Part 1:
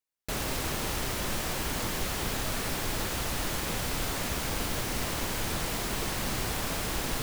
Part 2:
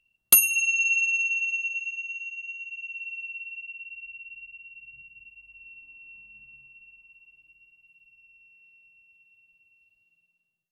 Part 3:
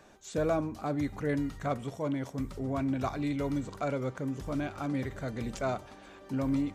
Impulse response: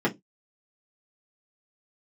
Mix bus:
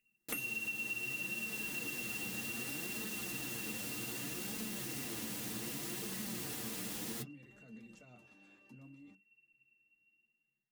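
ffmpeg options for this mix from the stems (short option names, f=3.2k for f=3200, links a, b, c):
-filter_complex "[0:a]highpass=45,highshelf=f=5.1k:g=8.5,volume=-1dB,asplit=2[a][b];[b]volume=-21.5dB[c];[1:a]highshelf=f=3k:t=q:w=3:g=-12,volume=-5dB,asplit=2[d][e];[e]volume=-8dB[f];[2:a]alimiter=level_in=9dB:limit=-24dB:level=0:latency=1:release=17,volume=-9dB,acompressor=threshold=-38dB:ratio=6,adelay=2400,volume=-10.5dB,asplit=2[g][h];[h]volume=-21dB[i];[a][g]amix=inputs=2:normalize=0,highpass=f=230:p=1,alimiter=level_in=5dB:limit=-24dB:level=0:latency=1,volume=-5dB,volume=0dB[j];[3:a]atrim=start_sample=2205[k];[c][f][i]amix=inputs=3:normalize=0[l];[l][k]afir=irnorm=-1:irlink=0[m];[d][j][m]amix=inputs=3:normalize=0,flanger=delay=4.6:depth=5.4:regen=42:speed=0.65:shape=sinusoidal,equalizer=f=890:w=0.68:g=-7.5,acompressor=threshold=-37dB:ratio=6"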